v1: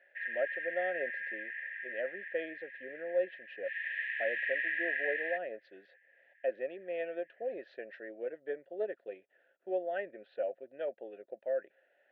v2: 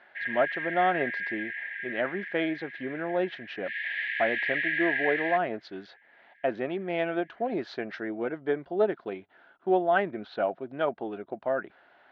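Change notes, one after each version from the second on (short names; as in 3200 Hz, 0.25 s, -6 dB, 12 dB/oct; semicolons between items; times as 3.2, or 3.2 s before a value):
background -4.0 dB; master: remove vowel filter e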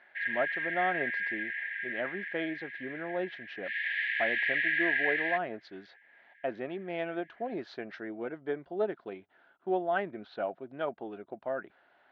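speech -6.0 dB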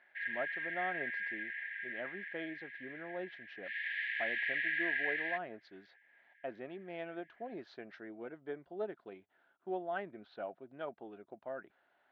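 speech -8.5 dB; background -6.0 dB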